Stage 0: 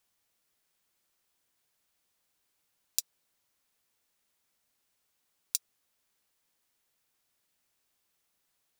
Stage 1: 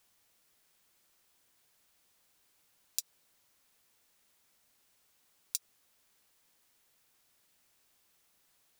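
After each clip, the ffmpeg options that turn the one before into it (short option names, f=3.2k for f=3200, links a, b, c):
-af "alimiter=limit=-15dB:level=0:latency=1:release=87,volume=6.5dB"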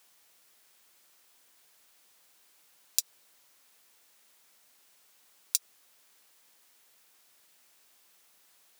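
-af "highpass=f=360:p=1,volume=7.5dB"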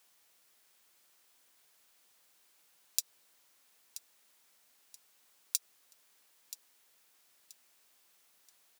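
-af "aecho=1:1:979|1958|2937:0.2|0.0638|0.0204,volume=-4.5dB"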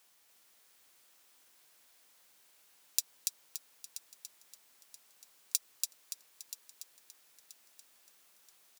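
-af "aecho=1:1:286|572|858|1144|1430:0.668|0.274|0.112|0.0461|0.0189,volume=1dB"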